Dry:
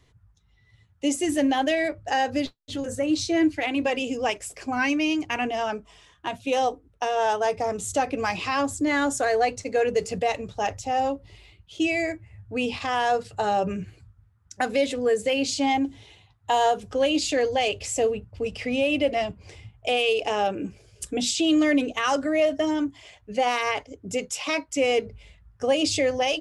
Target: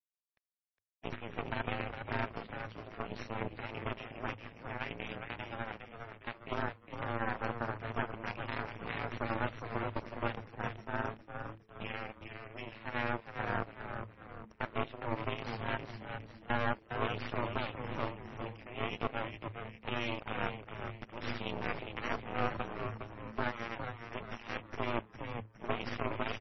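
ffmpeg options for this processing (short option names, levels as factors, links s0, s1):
-filter_complex "[0:a]agate=range=0.0224:threshold=0.00178:ratio=3:detection=peak,highpass=670,equalizer=f=1800:t=o:w=2.4:g=-13.5,aeval=exprs='val(0)*sin(2*PI*120*n/s)':c=same,acompressor=mode=upward:threshold=0.00282:ratio=2.5,aeval=exprs='0.112*(cos(1*acos(clip(val(0)/0.112,-1,1)))-cos(1*PI/2))+0.00447*(cos(2*acos(clip(val(0)/0.112,-1,1)))-cos(2*PI/2))+0.00631*(cos(6*acos(clip(val(0)/0.112,-1,1)))-cos(6*PI/2))+0.00141*(cos(7*acos(clip(val(0)/0.112,-1,1)))-cos(7*PI/2))+0.00631*(cos(8*acos(clip(val(0)/0.112,-1,1)))-cos(8*PI/2))':c=same,tremolo=f=110:d=0.824,aeval=exprs='0.0944*(cos(1*acos(clip(val(0)/0.0944,-1,1)))-cos(1*PI/2))+0.0335*(cos(6*acos(clip(val(0)/0.0944,-1,1)))-cos(6*PI/2))':c=same,aeval=exprs='val(0)*gte(abs(val(0)),0.00299)':c=same,highshelf=f=3300:t=q:w=1.5:g=-10,asplit=2[s0][s1];[s1]asplit=5[s2][s3][s4][s5][s6];[s2]adelay=409,afreqshift=-110,volume=0.473[s7];[s3]adelay=818,afreqshift=-220,volume=0.204[s8];[s4]adelay=1227,afreqshift=-330,volume=0.0871[s9];[s5]adelay=1636,afreqshift=-440,volume=0.0376[s10];[s6]adelay=2045,afreqshift=-550,volume=0.0162[s11];[s7][s8][s9][s10][s11]amix=inputs=5:normalize=0[s12];[s0][s12]amix=inputs=2:normalize=0" -ar 22050 -c:a libmp3lame -b:a 24k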